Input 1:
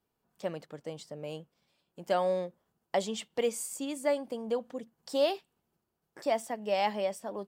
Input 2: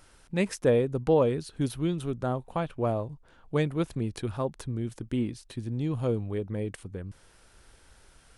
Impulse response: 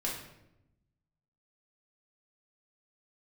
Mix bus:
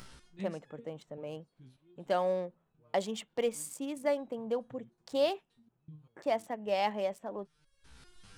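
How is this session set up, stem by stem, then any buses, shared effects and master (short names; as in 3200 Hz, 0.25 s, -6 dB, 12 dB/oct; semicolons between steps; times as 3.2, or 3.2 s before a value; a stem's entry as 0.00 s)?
-1.5 dB, 0.00 s, no send, Wiener smoothing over 9 samples
-4.0 dB, 0.00 s, no send, fifteen-band EQ 160 Hz +11 dB, 630 Hz -7 dB, 4000 Hz +4 dB, 10000 Hz -5 dB; upward compressor, threshold -25 dBFS; stepped resonator 5.1 Hz 64–1300 Hz; auto duck -19 dB, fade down 1.20 s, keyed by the first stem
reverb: off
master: dry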